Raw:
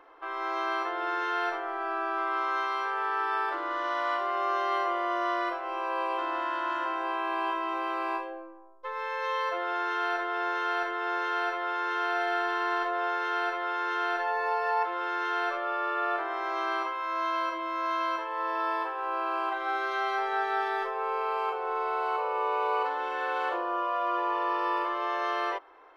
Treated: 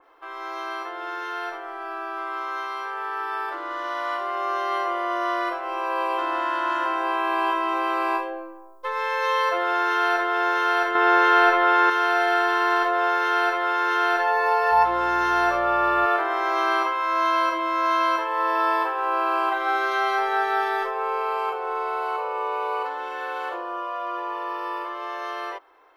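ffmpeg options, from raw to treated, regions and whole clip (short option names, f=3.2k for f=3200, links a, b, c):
-filter_complex "[0:a]asettb=1/sr,asplit=3[a][b][c];[a]atrim=end=10.954[d];[b]atrim=start=10.95:end=11.9,asetpts=PTS-STARTPTS,afade=t=in:d=0.004:c=qsin,afade=t=out:st=0.946:d=0.004:c=qsin,bass=f=250:g=5,treble=f=4k:g=-6,acontrast=32[e];[c]atrim=start=11.896[f];[d][e]acrossfade=d=0.004:c1=hsin:c2=qsin[g];[g][f]acrossfade=d=0.004:c1=qsin:c2=hsin,asettb=1/sr,asplit=3[h][i][j];[h]atrim=end=14.714[k];[i]atrim=start=14.71:end=16.06,asetpts=PTS-STARTPTS,afade=t=in:d=0.004:c=qsin,afade=t=out:st=1.346:d=0.004:c=qsin,equalizer=f=1.6k:w=4.8:g=-4.5,aeval=exprs='val(0)+0.00178*(sin(2*PI*60*n/s)+sin(2*PI*2*60*n/s)/2+sin(2*PI*3*60*n/s)/3+sin(2*PI*4*60*n/s)/4+sin(2*PI*5*60*n/s)/5)':c=same,asplit=2[l][m];[m]adelay=17,volume=-7.5dB[n];[l][n]amix=inputs=2:normalize=0,atrim=end_sample=59535[o];[j]atrim=start=16.056[p];[k][o]acrossfade=d=0.004:c1=hsin:c2=qsin[q];[q][p]acrossfade=d=0.004:c1=qsin:c2=hsin,aemphasis=mode=production:type=50kf,dynaudnorm=f=530:g=21:m=11dB,adynamicequalizer=threshold=0.02:dfrequency=2600:dqfactor=0.7:tfrequency=2600:tqfactor=0.7:attack=5:release=100:ratio=0.375:range=2:mode=cutabove:tftype=highshelf,volume=-2dB"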